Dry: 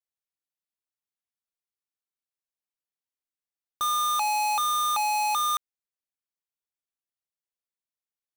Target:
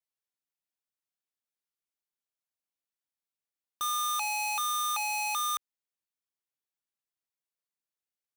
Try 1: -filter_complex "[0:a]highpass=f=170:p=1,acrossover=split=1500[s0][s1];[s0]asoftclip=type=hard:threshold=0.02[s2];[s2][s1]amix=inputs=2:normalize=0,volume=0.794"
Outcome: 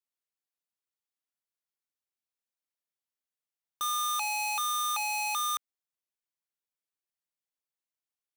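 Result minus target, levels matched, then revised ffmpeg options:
125 Hz band -2.5 dB
-filter_complex "[0:a]highpass=f=70:p=1,acrossover=split=1500[s0][s1];[s0]asoftclip=type=hard:threshold=0.02[s2];[s2][s1]amix=inputs=2:normalize=0,volume=0.794"

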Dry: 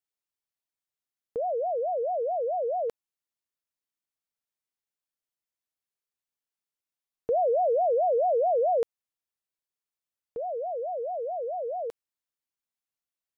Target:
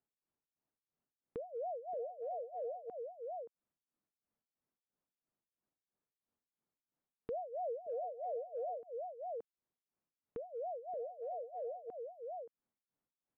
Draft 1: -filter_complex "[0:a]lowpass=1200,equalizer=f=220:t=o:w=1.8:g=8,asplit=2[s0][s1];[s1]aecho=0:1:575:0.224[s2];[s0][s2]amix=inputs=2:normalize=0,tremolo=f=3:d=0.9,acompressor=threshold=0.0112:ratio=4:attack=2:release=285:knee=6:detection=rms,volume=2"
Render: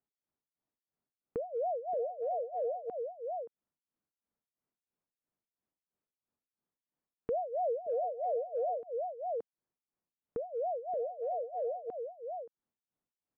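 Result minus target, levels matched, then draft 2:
compression: peak gain reduction -7 dB
-filter_complex "[0:a]lowpass=1200,equalizer=f=220:t=o:w=1.8:g=8,asplit=2[s0][s1];[s1]aecho=0:1:575:0.224[s2];[s0][s2]amix=inputs=2:normalize=0,tremolo=f=3:d=0.9,acompressor=threshold=0.00376:ratio=4:attack=2:release=285:knee=6:detection=rms,volume=2"

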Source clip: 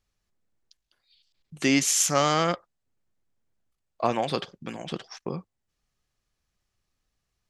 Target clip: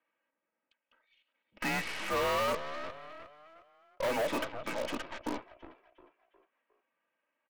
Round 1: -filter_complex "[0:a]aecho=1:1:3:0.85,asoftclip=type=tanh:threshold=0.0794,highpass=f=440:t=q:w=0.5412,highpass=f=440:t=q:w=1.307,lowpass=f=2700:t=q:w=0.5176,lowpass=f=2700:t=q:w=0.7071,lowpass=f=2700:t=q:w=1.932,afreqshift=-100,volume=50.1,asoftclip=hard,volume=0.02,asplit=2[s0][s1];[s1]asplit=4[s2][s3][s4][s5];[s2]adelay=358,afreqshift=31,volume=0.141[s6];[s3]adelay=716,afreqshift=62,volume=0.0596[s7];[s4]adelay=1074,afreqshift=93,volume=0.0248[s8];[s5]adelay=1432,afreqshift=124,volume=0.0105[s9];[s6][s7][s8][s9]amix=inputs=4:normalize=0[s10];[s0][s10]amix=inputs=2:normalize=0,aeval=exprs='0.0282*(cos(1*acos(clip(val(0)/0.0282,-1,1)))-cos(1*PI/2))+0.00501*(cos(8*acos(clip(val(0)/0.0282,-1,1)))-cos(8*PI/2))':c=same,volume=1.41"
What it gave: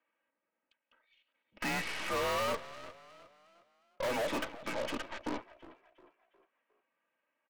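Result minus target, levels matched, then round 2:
overload inside the chain: distortion +14 dB
-filter_complex "[0:a]aecho=1:1:3:0.85,asoftclip=type=tanh:threshold=0.0794,highpass=f=440:t=q:w=0.5412,highpass=f=440:t=q:w=1.307,lowpass=f=2700:t=q:w=0.5176,lowpass=f=2700:t=q:w=0.7071,lowpass=f=2700:t=q:w=1.932,afreqshift=-100,volume=14.1,asoftclip=hard,volume=0.0708,asplit=2[s0][s1];[s1]asplit=4[s2][s3][s4][s5];[s2]adelay=358,afreqshift=31,volume=0.141[s6];[s3]adelay=716,afreqshift=62,volume=0.0596[s7];[s4]adelay=1074,afreqshift=93,volume=0.0248[s8];[s5]adelay=1432,afreqshift=124,volume=0.0105[s9];[s6][s7][s8][s9]amix=inputs=4:normalize=0[s10];[s0][s10]amix=inputs=2:normalize=0,aeval=exprs='0.0282*(cos(1*acos(clip(val(0)/0.0282,-1,1)))-cos(1*PI/2))+0.00501*(cos(8*acos(clip(val(0)/0.0282,-1,1)))-cos(8*PI/2))':c=same,volume=1.41"

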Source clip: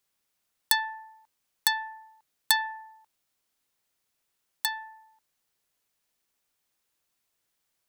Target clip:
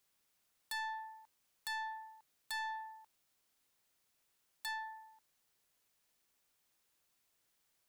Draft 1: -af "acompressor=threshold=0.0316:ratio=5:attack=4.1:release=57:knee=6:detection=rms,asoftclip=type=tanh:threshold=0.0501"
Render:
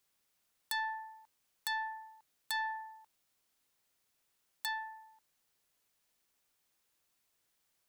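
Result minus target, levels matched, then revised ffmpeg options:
saturation: distortion -7 dB
-af "acompressor=threshold=0.0316:ratio=5:attack=4.1:release=57:knee=6:detection=rms,asoftclip=type=tanh:threshold=0.015"

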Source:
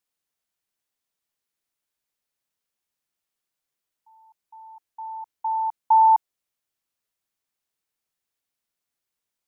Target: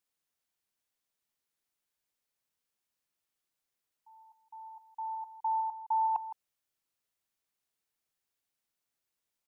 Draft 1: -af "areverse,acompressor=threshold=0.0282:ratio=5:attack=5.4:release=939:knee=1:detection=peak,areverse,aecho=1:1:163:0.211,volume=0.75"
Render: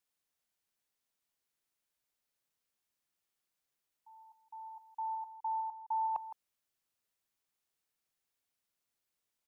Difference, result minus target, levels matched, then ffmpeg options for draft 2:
compression: peak gain reduction +5 dB
-af "areverse,acompressor=threshold=0.0562:ratio=5:attack=5.4:release=939:knee=1:detection=peak,areverse,aecho=1:1:163:0.211,volume=0.75"

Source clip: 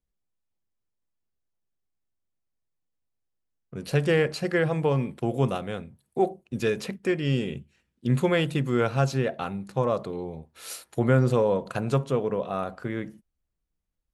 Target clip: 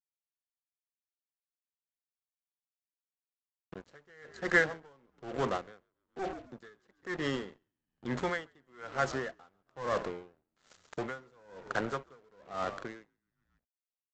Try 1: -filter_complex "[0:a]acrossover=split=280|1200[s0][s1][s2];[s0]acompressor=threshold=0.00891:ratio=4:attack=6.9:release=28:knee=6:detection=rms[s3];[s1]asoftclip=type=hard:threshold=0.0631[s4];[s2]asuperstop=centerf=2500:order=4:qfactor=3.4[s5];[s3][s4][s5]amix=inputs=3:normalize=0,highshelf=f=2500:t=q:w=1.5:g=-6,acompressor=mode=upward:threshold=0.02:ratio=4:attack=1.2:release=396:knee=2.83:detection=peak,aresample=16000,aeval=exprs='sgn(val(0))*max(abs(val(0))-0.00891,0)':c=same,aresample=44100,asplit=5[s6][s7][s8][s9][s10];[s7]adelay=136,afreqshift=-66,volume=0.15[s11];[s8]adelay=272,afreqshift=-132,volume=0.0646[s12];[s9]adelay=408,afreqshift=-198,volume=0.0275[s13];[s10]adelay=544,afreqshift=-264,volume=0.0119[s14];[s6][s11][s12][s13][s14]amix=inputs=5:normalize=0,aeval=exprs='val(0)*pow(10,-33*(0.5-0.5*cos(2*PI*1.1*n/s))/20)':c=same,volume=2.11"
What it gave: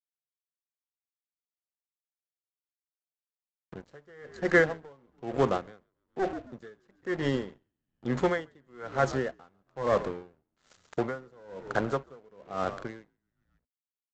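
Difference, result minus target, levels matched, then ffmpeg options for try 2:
compression: peak gain reduction -7 dB; hard clipper: distortion -7 dB
-filter_complex "[0:a]acrossover=split=280|1200[s0][s1][s2];[s0]acompressor=threshold=0.00299:ratio=4:attack=6.9:release=28:knee=6:detection=rms[s3];[s1]asoftclip=type=hard:threshold=0.0237[s4];[s2]asuperstop=centerf=2500:order=4:qfactor=3.4[s5];[s3][s4][s5]amix=inputs=3:normalize=0,highshelf=f=2500:t=q:w=1.5:g=-6,acompressor=mode=upward:threshold=0.02:ratio=4:attack=1.2:release=396:knee=2.83:detection=peak,aresample=16000,aeval=exprs='sgn(val(0))*max(abs(val(0))-0.00891,0)':c=same,aresample=44100,asplit=5[s6][s7][s8][s9][s10];[s7]adelay=136,afreqshift=-66,volume=0.15[s11];[s8]adelay=272,afreqshift=-132,volume=0.0646[s12];[s9]adelay=408,afreqshift=-198,volume=0.0275[s13];[s10]adelay=544,afreqshift=-264,volume=0.0119[s14];[s6][s11][s12][s13][s14]amix=inputs=5:normalize=0,aeval=exprs='val(0)*pow(10,-33*(0.5-0.5*cos(2*PI*1.1*n/s))/20)':c=same,volume=2.11"

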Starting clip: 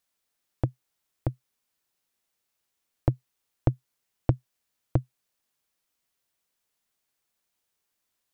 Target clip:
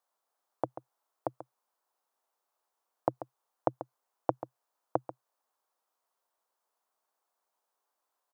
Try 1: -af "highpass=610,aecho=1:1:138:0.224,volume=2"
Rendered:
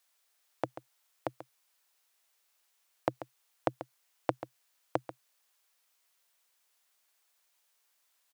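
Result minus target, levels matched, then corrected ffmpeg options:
2 kHz band +10.5 dB
-af "highpass=610,highshelf=f=1500:t=q:w=1.5:g=-13,aecho=1:1:138:0.224,volume=2"

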